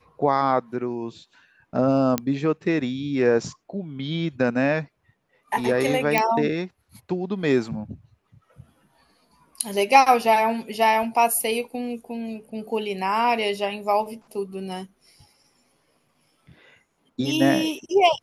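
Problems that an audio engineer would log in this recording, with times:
2.18 s: pop -7 dBFS
6.18 s: pop -5 dBFS

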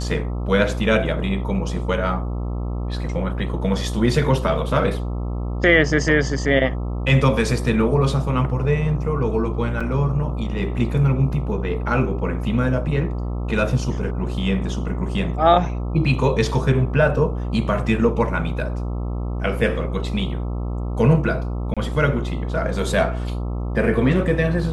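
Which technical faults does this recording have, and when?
buzz 60 Hz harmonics 22 -25 dBFS
9.80–9.81 s: dropout 5.7 ms
21.74–21.77 s: dropout 26 ms

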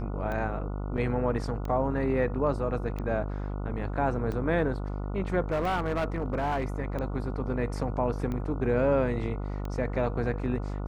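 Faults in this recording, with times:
buzz 50 Hz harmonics 29 -33 dBFS
tick 45 rpm -23 dBFS
0.97–0.98 s: dropout 7 ms
5.51–6.65 s: clipped -24 dBFS

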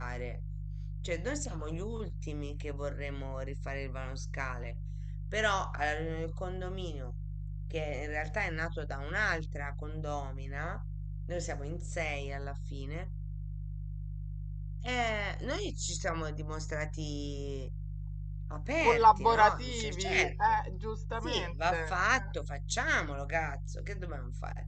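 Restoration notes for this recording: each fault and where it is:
hum 50 Hz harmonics 3 -39 dBFS

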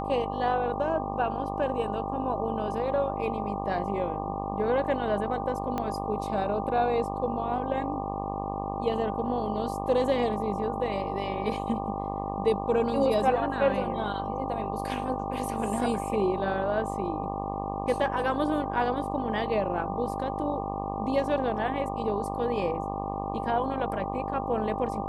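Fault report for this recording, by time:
buzz 50 Hz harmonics 24 -34 dBFS
whine 790 Hz -34 dBFS
5.78 s: pop -17 dBFS

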